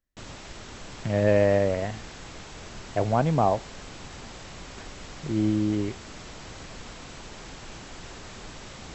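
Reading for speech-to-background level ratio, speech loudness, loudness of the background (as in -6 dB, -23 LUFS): 17.0 dB, -25.0 LUFS, -42.0 LUFS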